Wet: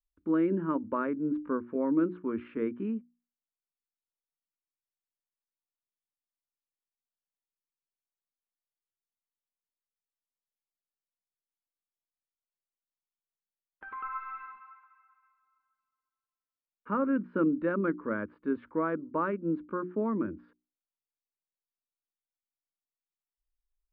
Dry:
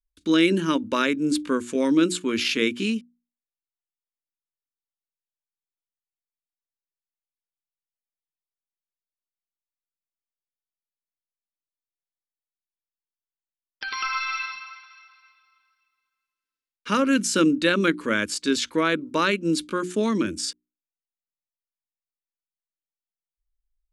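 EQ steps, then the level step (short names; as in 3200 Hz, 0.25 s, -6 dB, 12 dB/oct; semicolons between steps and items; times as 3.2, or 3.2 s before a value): ladder low-pass 1500 Hz, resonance 30%; air absorption 450 m; 0.0 dB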